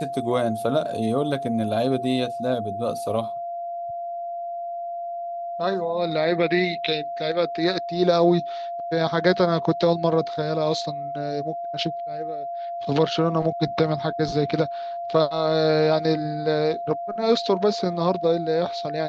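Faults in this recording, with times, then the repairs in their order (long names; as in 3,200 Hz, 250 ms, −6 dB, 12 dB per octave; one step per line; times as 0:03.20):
whistle 690 Hz −28 dBFS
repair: notch filter 690 Hz, Q 30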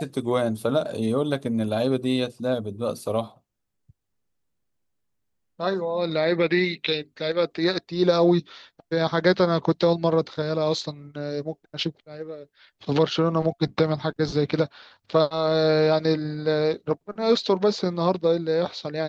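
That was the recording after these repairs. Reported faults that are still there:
none of them is left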